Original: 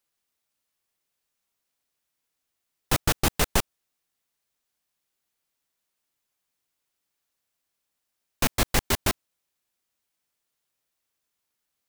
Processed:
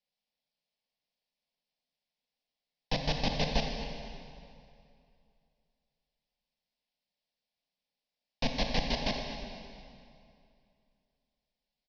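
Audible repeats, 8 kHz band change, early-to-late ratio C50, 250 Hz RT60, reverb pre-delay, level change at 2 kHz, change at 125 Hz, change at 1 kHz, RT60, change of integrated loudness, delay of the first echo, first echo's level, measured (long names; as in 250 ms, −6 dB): 2, −20.0 dB, 3.0 dB, 2.6 s, 26 ms, −8.0 dB, −6.5 dB, −6.0 dB, 2.5 s, −8.0 dB, 240 ms, −14.0 dB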